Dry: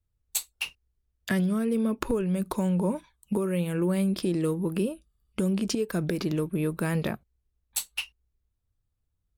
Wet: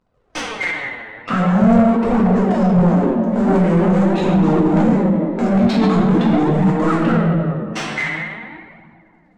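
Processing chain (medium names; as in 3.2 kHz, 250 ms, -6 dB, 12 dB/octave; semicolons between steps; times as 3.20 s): CVSD coder 64 kbps; bass shelf 500 Hz +6.5 dB; hard clipper -23 dBFS, distortion -9 dB; reverberation RT60 2.5 s, pre-delay 4 ms, DRR -8 dB; flange 0.45 Hz, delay 0.5 ms, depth 8.7 ms, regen +20%; vibrato 0.59 Hz 46 cents; overdrive pedal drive 24 dB, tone 1.7 kHz, clips at -3.5 dBFS; formant shift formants -5 st; treble shelf 7.5 kHz -6.5 dB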